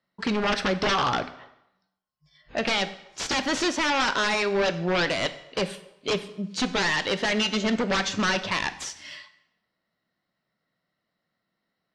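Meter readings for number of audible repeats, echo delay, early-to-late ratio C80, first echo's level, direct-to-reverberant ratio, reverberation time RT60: none, none, 16.0 dB, none, 11.0 dB, 0.85 s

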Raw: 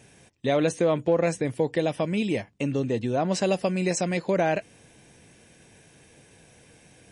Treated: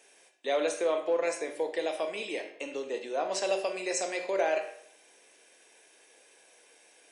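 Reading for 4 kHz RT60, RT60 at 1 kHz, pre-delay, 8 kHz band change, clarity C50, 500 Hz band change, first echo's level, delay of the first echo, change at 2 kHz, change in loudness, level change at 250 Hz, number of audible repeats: 0.55 s, 0.60 s, 21 ms, -2.0 dB, 8.5 dB, -4.5 dB, none, none, -3.0 dB, -6.0 dB, -14.5 dB, none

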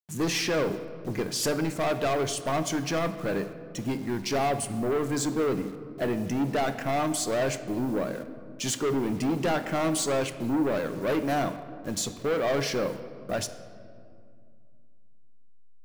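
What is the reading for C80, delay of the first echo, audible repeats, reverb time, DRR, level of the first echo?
13.0 dB, none, none, 2.2 s, 10.0 dB, none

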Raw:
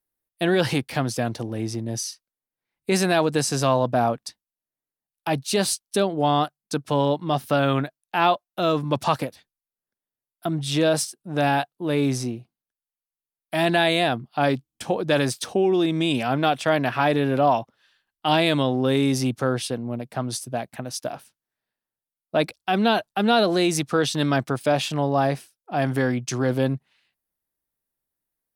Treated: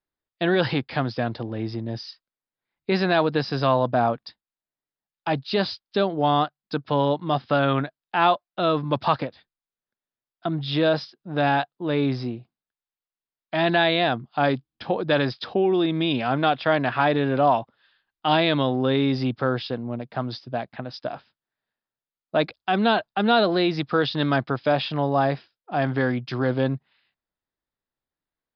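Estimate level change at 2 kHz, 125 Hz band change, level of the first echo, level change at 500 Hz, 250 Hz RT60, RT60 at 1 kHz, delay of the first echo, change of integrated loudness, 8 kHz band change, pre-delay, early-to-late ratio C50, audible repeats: +0.5 dB, -1.0 dB, none, -0.5 dB, none, none, none, -0.5 dB, under -30 dB, none, none, none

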